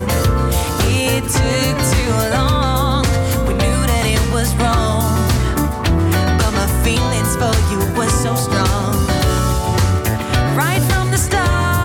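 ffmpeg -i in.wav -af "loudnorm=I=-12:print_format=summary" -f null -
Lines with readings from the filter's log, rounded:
Input Integrated:    -15.9 LUFS
Input True Peak:      -5.5 dBTP
Input LRA:             0.2 LU
Input Threshold:     -25.9 LUFS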